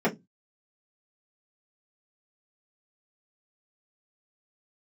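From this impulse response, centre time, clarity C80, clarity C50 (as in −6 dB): 12 ms, 28.0 dB, 17.5 dB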